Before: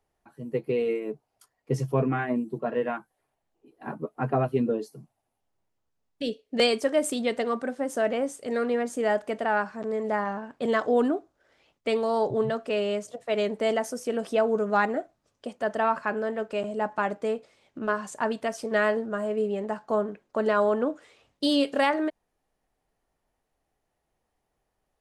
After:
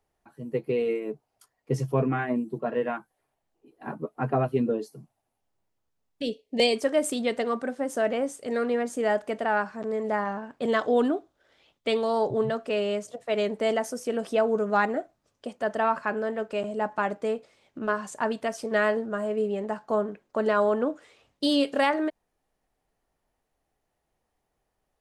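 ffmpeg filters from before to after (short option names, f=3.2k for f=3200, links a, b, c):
-filter_complex "[0:a]asettb=1/sr,asplit=3[a][b][c];[a]atrim=end=6.254[d];[b]atrim=start=6.25:end=6.76,asetpts=PTS-STARTPTS,afade=t=in:d=0.004:c=qsin,afade=t=out:st=0.506:d=0.004:c=qsin,asuperstop=centerf=1400:order=4:qfactor=1.6[e];[c]atrim=start=6.756[f];[d][e]acrossfade=d=0.004:c1=hsin:c2=qsin[g];[g][f]acrossfade=d=0.004:c1=qsin:c2=hsin,asettb=1/sr,asplit=3[h][i][j];[h]atrim=end=10.744[k];[i]atrim=start=10.74:end=12.13,asetpts=PTS-STARTPTS,afade=t=in:d=0.004:c=qsin,afade=t=out:st=1.386:d=0.004:c=qsin,equalizer=f=3.5k:w=3:g=7[l];[j]atrim=start=12.126[m];[k][l]acrossfade=d=0.004:c1=hsin:c2=qsin[n];[n][m]acrossfade=d=0.004:c1=qsin:c2=hsin"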